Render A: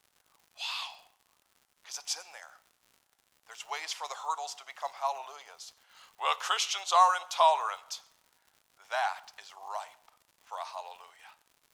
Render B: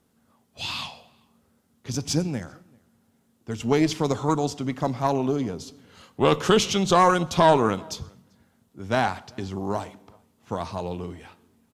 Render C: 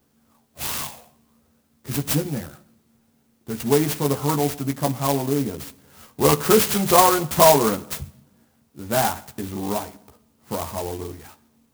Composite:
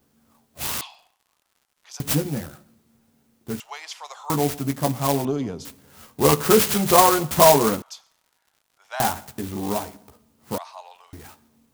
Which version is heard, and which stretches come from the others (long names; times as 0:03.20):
C
0:00.81–0:02.00: punch in from A
0:03.60–0:04.30: punch in from A
0:05.25–0:05.65: punch in from B
0:07.82–0:09.00: punch in from A
0:10.58–0:11.13: punch in from A